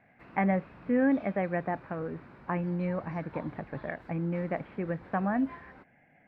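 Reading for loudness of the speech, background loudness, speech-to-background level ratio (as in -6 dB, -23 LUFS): -32.0 LUFS, -51.0 LUFS, 19.0 dB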